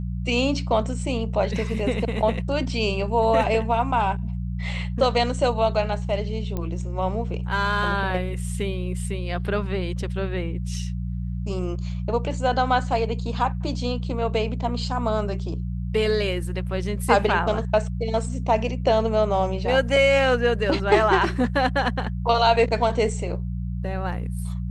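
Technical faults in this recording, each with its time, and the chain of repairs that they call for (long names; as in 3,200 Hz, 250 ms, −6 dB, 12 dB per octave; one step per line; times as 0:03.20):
mains hum 60 Hz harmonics 3 −28 dBFS
0:06.57: click −16 dBFS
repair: click removal
hum removal 60 Hz, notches 3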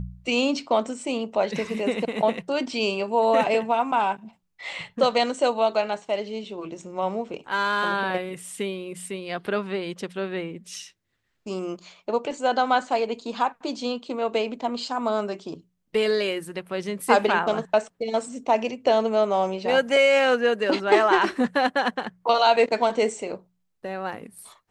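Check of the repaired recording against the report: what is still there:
none of them is left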